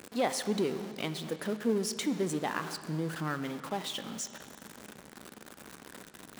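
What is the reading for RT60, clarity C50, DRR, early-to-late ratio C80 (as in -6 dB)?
2.3 s, 11.5 dB, 10.5 dB, 12.5 dB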